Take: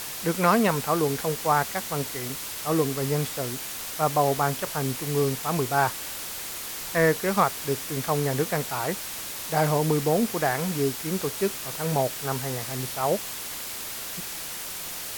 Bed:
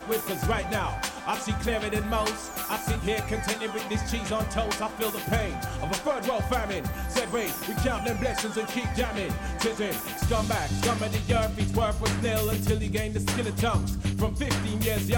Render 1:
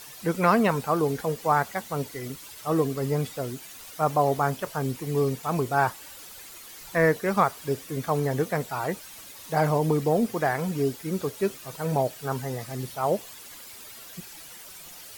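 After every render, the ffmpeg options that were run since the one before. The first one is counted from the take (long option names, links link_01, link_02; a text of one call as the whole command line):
ffmpeg -i in.wav -af "afftdn=noise_reduction=12:noise_floor=-35" out.wav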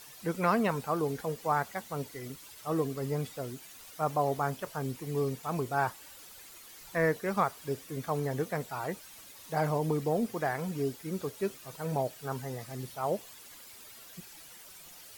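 ffmpeg -i in.wav -af "volume=-6.5dB" out.wav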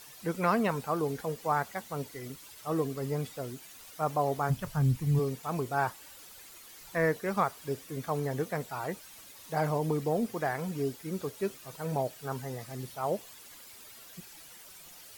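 ffmpeg -i in.wav -filter_complex "[0:a]asplit=3[link_01][link_02][link_03];[link_01]afade=type=out:start_time=4.49:duration=0.02[link_04];[link_02]asubboost=boost=12:cutoff=120,afade=type=in:start_time=4.49:duration=0.02,afade=type=out:start_time=5.18:duration=0.02[link_05];[link_03]afade=type=in:start_time=5.18:duration=0.02[link_06];[link_04][link_05][link_06]amix=inputs=3:normalize=0" out.wav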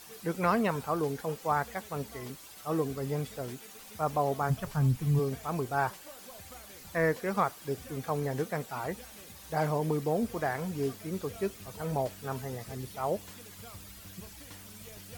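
ffmpeg -i in.wav -i bed.wav -filter_complex "[1:a]volume=-24dB[link_01];[0:a][link_01]amix=inputs=2:normalize=0" out.wav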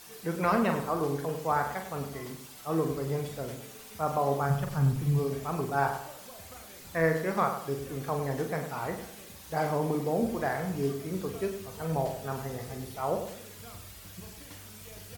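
ffmpeg -i in.wav -filter_complex "[0:a]asplit=2[link_01][link_02];[link_02]adelay=43,volume=-7dB[link_03];[link_01][link_03]amix=inputs=2:normalize=0,asplit=2[link_04][link_05];[link_05]adelay=100,lowpass=frequency=2000:poles=1,volume=-8dB,asplit=2[link_06][link_07];[link_07]adelay=100,lowpass=frequency=2000:poles=1,volume=0.38,asplit=2[link_08][link_09];[link_09]adelay=100,lowpass=frequency=2000:poles=1,volume=0.38,asplit=2[link_10][link_11];[link_11]adelay=100,lowpass=frequency=2000:poles=1,volume=0.38[link_12];[link_06][link_08][link_10][link_12]amix=inputs=4:normalize=0[link_13];[link_04][link_13]amix=inputs=2:normalize=0" out.wav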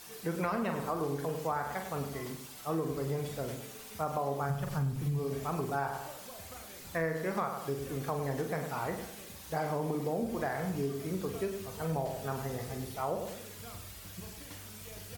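ffmpeg -i in.wav -af "acompressor=threshold=-30dB:ratio=4" out.wav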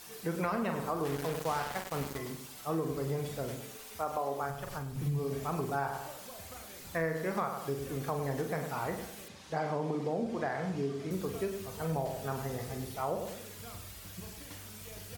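ffmpeg -i in.wav -filter_complex "[0:a]asettb=1/sr,asplit=3[link_01][link_02][link_03];[link_01]atrim=end=1.054[link_04];[link_02]atrim=start=1.05:end=2.18,asetpts=PTS-STARTPTS,afade=type=in:duration=0.004:curve=qsin,afade=type=out:start_time=1.126:duration=0.004:curve=qsin,acrusher=bits=5:mix=0:aa=0.5[link_05];[link_03]atrim=start=2.176[link_06];[link_04][link_05]acrossfade=duration=0.004:curve1=hsin:curve2=qsin[link_07];[link_07][link_06]acrossfade=duration=0.004:curve1=qsin:curve2=hsin,asettb=1/sr,asplit=3[link_08][link_09][link_10];[link_08]atrim=end=3.764[link_11];[link_09]atrim=start=3.76:end=4.95,asetpts=PTS-STARTPTS,afade=type=in:duration=0.004:curve=qsin,afade=type=out:start_time=1.186:duration=0.004:curve=qsin,equalizer=frequency=160:width=1.6:gain=-12.5[link_12];[link_10]atrim=start=4.946[link_13];[link_11][link_12]acrossfade=duration=0.004:curve1=hsin:curve2=qsin[link_14];[link_14][link_13]acrossfade=duration=0.004:curve1=qsin:curve2=hsin,asettb=1/sr,asplit=3[link_15][link_16][link_17];[link_15]atrim=end=9.284[link_18];[link_16]atrim=start=9.28:end=11.11,asetpts=PTS-STARTPTS,afade=type=in:duration=0.004:curve=qsin,afade=type=out:start_time=1.826:duration=0.004:curve=qsin,highpass=110,lowpass=5800[link_19];[link_17]atrim=start=11.106[link_20];[link_18][link_19]acrossfade=duration=0.004:curve1=hsin:curve2=qsin[link_21];[link_21][link_20]acrossfade=duration=0.004:curve1=qsin:curve2=hsin" out.wav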